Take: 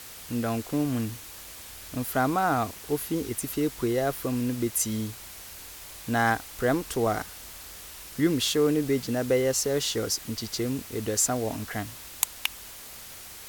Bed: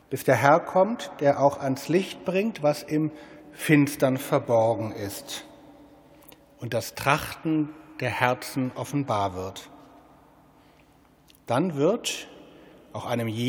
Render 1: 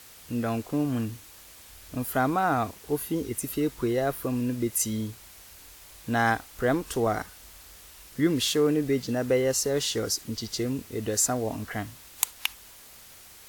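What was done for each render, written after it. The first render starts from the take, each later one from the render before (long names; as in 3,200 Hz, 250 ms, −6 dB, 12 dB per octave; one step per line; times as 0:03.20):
noise reduction from a noise print 6 dB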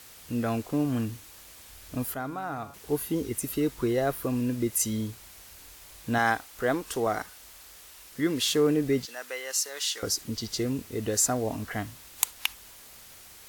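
0:02.14–0:02.74: tuned comb filter 140 Hz, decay 1.6 s, mix 70%
0:06.18–0:08.48: low-shelf EQ 240 Hz −8.5 dB
0:09.05–0:10.03: high-pass filter 1,200 Hz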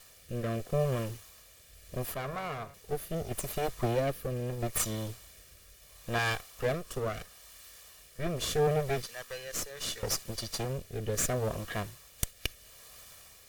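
lower of the sound and its delayed copy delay 1.7 ms
rotating-speaker cabinet horn 0.75 Hz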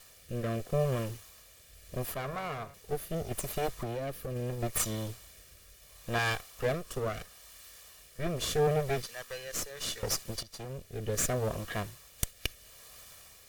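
0:03.81–0:04.36: downward compressor, threshold −32 dBFS
0:10.43–0:11.13: fade in, from −15.5 dB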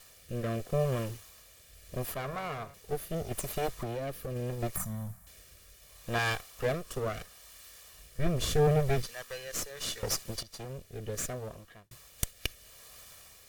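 0:04.76–0:05.27: drawn EQ curve 120 Hz 0 dB, 180 Hz +10 dB, 350 Hz −27 dB, 710 Hz −2 dB, 1,100 Hz −4 dB, 1,800 Hz −7 dB, 2,900 Hz −20 dB, 4,800 Hz −17 dB, 11,000 Hz −3 dB
0:07.92–0:09.11: low-shelf EQ 160 Hz +10 dB
0:10.63–0:11.91: fade out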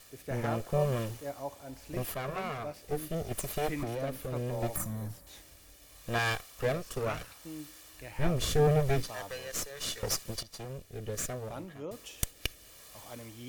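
mix in bed −19 dB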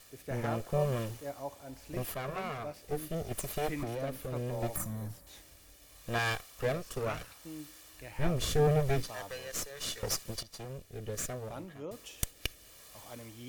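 level −1.5 dB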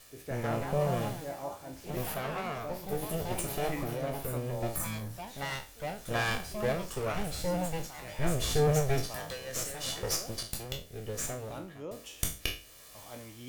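peak hold with a decay on every bin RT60 0.36 s
delay with pitch and tempo change per echo 247 ms, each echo +3 semitones, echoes 2, each echo −6 dB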